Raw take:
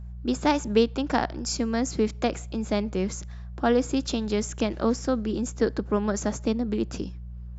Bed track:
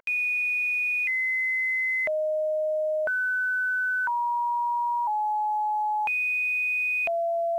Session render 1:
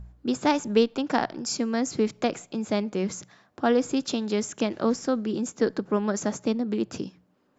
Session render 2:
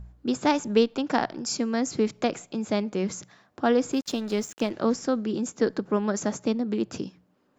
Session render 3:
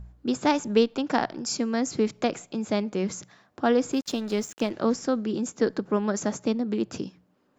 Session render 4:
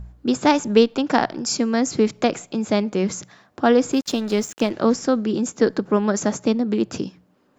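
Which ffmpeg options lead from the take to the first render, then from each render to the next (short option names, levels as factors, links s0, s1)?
-af "bandreject=f=60:t=h:w=4,bandreject=f=120:t=h:w=4,bandreject=f=180:t=h:w=4"
-filter_complex "[0:a]asettb=1/sr,asplit=3[s0][s1][s2];[s0]atrim=end=3.924[s3];[s1]atrim=start=3.92:end=4.71,asetpts=PTS-STARTPTS,afade=t=in:d=0.004:c=qsin,afade=t=out:st=0.786:d=0.004:c=qsin,aeval=exprs='sgn(val(0))*max(abs(val(0))-0.0075,0)':c=same[s4];[s2]atrim=start=4.706[s5];[s3][s4]acrossfade=d=0.004:c1=hsin:c2=qsin[s6];[s6][s5]acrossfade=d=0.004:c1=qsin:c2=hsin"
-af anull
-af "volume=2"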